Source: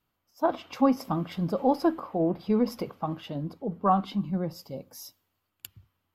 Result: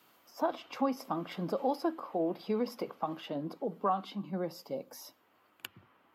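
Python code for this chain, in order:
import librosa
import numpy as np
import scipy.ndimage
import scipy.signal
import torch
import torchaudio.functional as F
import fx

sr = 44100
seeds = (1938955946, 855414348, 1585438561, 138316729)

y = scipy.signal.sosfilt(scipy.signal.butter(2, 290.0, 'highpass', fs=sr, output='sos'), x)
y = fx.band_squash(y, sr, depth_pct=70)
y = y * librosa.db_to_amplitude(-4.5)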